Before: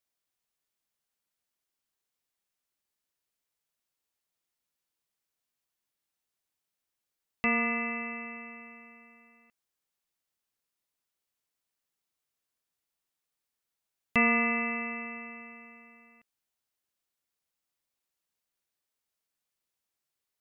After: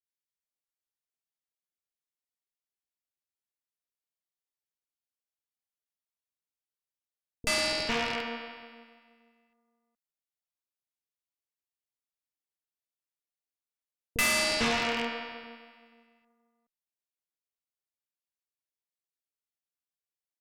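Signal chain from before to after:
loose part that buzzes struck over −46 dBFS, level −28 dBFS
three-band delay without the direct sound lows, highs, mids 30/450 ms, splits 190/1,200 Hz
harmonic generator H 7 −20 dB, 8 −8 dB, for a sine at −16.5 dBFS
level −1.5 dB

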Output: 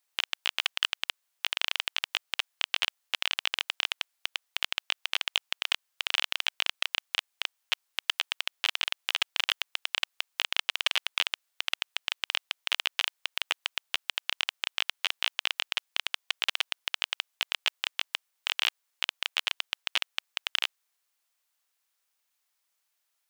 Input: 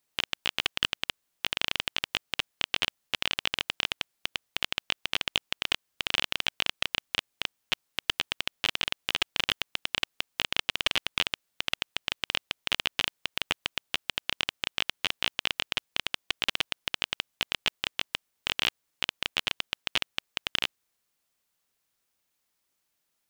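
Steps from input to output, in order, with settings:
high-pass filter 720 Hz 12 dB per octave

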